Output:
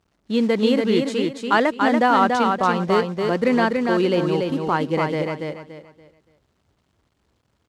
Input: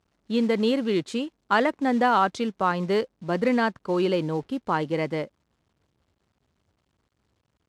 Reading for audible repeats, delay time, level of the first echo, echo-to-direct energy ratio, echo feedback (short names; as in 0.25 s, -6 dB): 3, 0.286 s, -4.0 dB, -3.5 dB, 29%